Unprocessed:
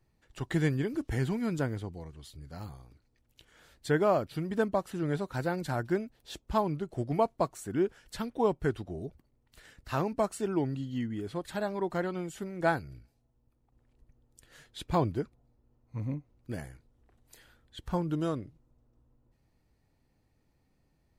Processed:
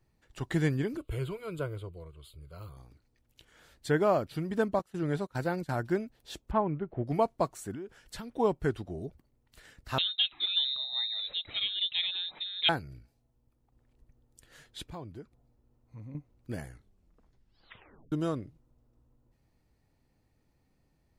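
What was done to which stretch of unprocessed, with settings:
0:00.97–0:02.77: phaser with its sweep stopped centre 1,200 Hz, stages 8
0:04.79–0:05.82: noise gate −38 dBFS, range −17 dB
0:06.51–0:07.07: low-pass filter 2,400 Hz 24 dB per octave
0:07.71–0:08.33: downward compressor 10 to 1, threshold −37 dBFS
0:09.98–0:12.69: voice inversion scrambler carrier 3,900 Hz
0:14.83–0:16.15: downward compressor 2 to 1, threshold −51 dBFS
0:16.66: tape stop 1.46 s

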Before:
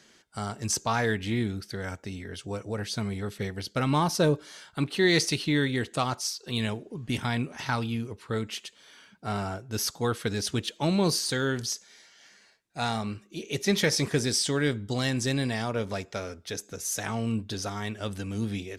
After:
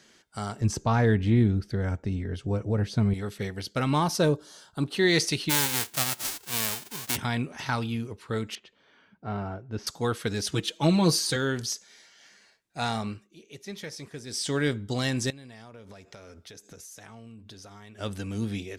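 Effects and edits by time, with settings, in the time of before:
0:00.61–0:03.14: spectral tilt −3 dB per octave
0:04.34–0:04.92: parametric band 2,200 Hz −14.5 dB
0:05.49–0:07.15: spectral envelope flattened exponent 0.1
0:08.55–0:09.87: head-to-tape spacing loss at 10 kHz 34 dB
0:10.51–0:11.36: comb filter 6.2 ms, depth 73%
0:13.07–0:14.55: duck −14.5 dB, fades 0.29 s
0:15.30–0:17.99: downward compressor 20 to 1, threshold −42 dBFS

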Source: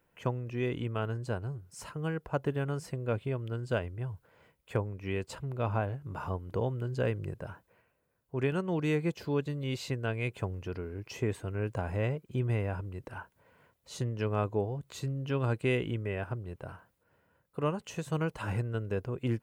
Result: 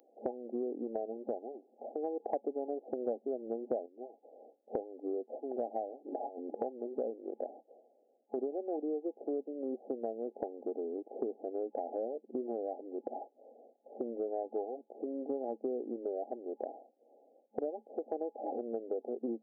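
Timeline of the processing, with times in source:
0:02.20–0:03.86: clip gain +7.5 dB
0:05.95–0:06.62: compressor whose output falls as the input rises −40 dBFS, ratio −0.5
whole clip: brick-wall band-pass 220–830 Hz; spectral tilt +4.5 dB per octave; downward compressor 6 to 1, threshold −49 dBFS; level +15 dB

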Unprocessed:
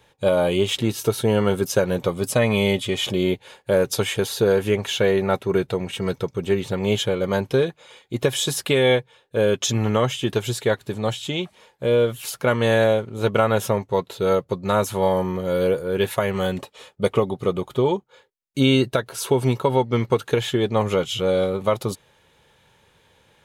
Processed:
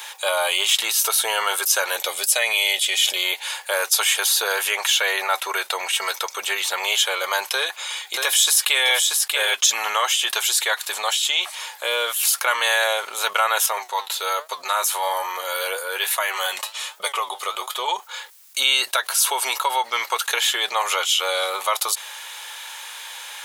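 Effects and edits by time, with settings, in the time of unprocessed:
0:01.97–0:03.16: parametric band 1,100 Hz −12.5 dB 0.71 octaves
0:07.48–0:09.54: single-tap delay 633 ms −6.5 dB
0:13.66–0:17.88: flanger 1.2 Hz, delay 5.9 ms, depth 4.6 ms, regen +64%
whole clip: high-pass filter 830 Hz 24 dB per octave; high-shelf EQ 4,400 Hz +11 dB; envelope flattener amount 50%

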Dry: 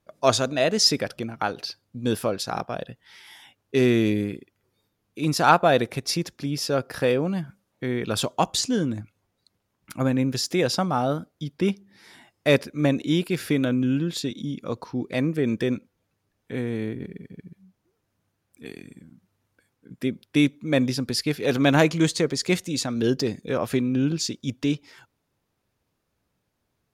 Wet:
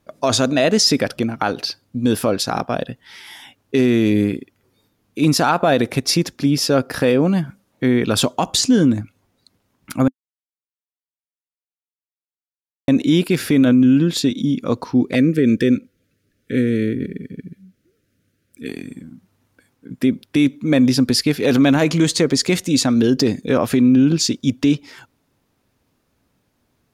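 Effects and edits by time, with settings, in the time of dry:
0:10.08–0:12.88: silence
0:15.15–0:18.69: Chebyshev band-stop filter 520–1,500 Hz
whole clip: parametric band 260 Hz +6 dB 0.4 octaves; brickwall limiter −15 dBFS; level +8.5 dB

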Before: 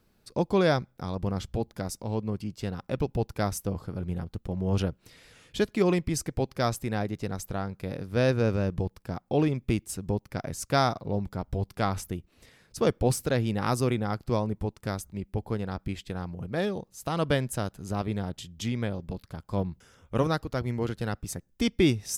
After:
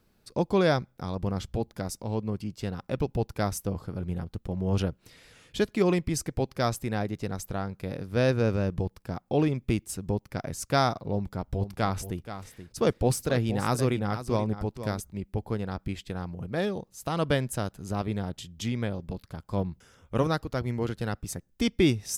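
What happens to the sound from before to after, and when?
0:11.13–0:15.00: single-tap delay 478 ms −11.5 dB

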